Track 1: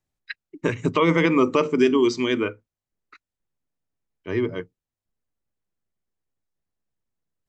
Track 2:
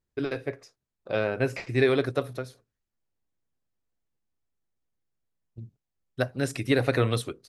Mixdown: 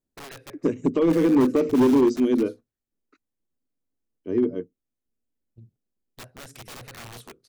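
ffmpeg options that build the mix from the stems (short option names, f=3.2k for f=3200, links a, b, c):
-filter_complex "[0:a]equalizer=f=125:t=o:w=1:g=-8,equalizer=f=250:t=o:w=1:g=11,equalizer=f=500:t=o:w=1:g=4,equalizer=f=1k:t=o:w=1:g=-9,equalizer=f=2k:t=o:w=1:g=-11,equalizer=f=4k:t=o:w=1:g=-9,volume=9.5dB,asoftclip=hard,volume=-9.5dB,volume=-4dB[a];[1:a]acompressor=threshold=-27dB:ratio=6,aeval=exprs='(mod(26.6*val(0)+1,2)-1)/26.6':c=same,volume=-7dB[b];[a][b]amix=inputs=2:normalize=0"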